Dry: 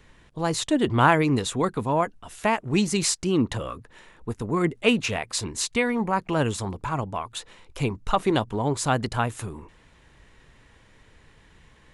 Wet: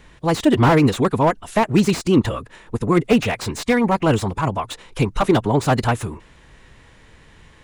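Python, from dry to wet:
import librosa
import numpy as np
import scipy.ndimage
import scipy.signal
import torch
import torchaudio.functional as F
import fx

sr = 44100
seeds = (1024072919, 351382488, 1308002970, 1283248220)

y = fx.stretch_vocoder(x, sr, factor=0.64)
y = fx.slew_limit(y, sr, full_power_hz=81.0)
y = y * 10.0 ** (8.0 / 20.0)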